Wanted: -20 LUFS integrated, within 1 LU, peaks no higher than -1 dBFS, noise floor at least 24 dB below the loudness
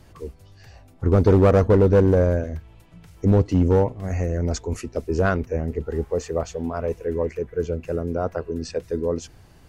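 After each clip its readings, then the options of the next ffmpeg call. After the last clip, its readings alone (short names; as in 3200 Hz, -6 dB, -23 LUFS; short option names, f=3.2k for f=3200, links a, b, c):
loudness -22.0 LUFS; peak -9.0 dBFS; loudness target -20.0 LUFS
-> -af "volume=2dB"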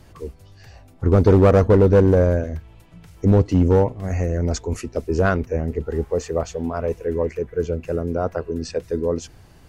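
loudness -20.0 LUFS; peak -7.0 dBFS; noise floor -48 dBFS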